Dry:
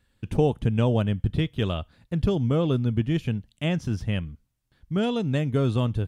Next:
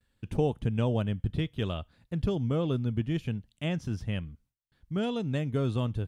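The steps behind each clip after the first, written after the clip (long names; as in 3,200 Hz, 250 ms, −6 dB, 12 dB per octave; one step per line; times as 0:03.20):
noise gate with hold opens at −59 dBFS
level −5.5 dB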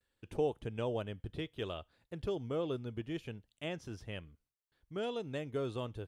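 low shelf with overshoot 280 Hz −7.5 dB, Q 1.5
level −5.5 dB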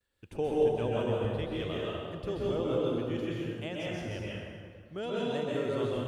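dense smooth reverb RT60 2 s, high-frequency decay 0.65×, pre-delay 115 ms, DRR −5.5 dB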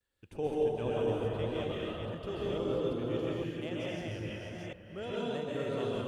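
delay that plays each chunk backwards 430 ms, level −2.5 dB
level −4 dB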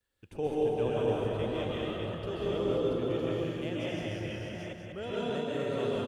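single-tap delay 193 ms −5.5 dB
level +1.5 dB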